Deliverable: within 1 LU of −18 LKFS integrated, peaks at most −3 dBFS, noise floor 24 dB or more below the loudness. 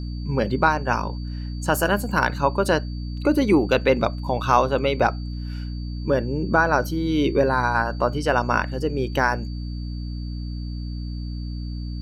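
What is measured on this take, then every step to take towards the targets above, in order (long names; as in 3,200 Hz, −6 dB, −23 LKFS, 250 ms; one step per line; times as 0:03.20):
mains hum 60 Hz; hum harmonics up to 300 Hz; level of the hum −27 dBFS; interfering tone 4,600 Hz; level of the tone −46 dBFS; integrated loudness −23.0 LKFS; sample peak −4.0 dBFS; target loudness −18.0 LKFS
→ hum removal 60 Hz, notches 5
notch filter 4,600 Hz, Q 30
level +5 dB
brickwall limiter −3 dBFS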